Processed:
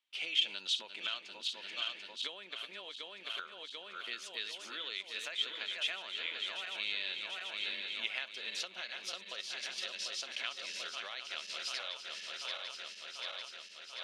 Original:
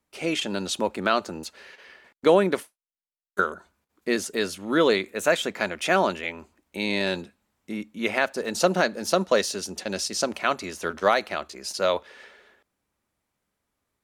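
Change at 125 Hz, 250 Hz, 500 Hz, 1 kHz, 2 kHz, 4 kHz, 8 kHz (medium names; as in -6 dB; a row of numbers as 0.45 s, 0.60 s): under -35 dB, -32.5 dB, -28.0 dB, -21.0 dB, -11.0 dB, -2.0 dB, -13.5 dB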